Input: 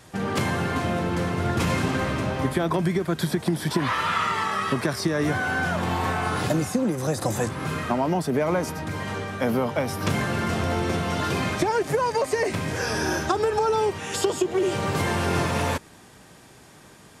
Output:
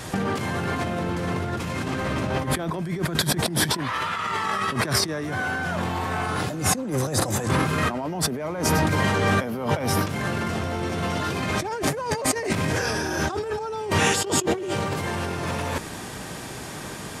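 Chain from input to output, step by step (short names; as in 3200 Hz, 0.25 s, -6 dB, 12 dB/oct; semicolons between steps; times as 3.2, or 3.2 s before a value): negative-ratio compressor -33 dBFS, ratio -1; gain +7 dB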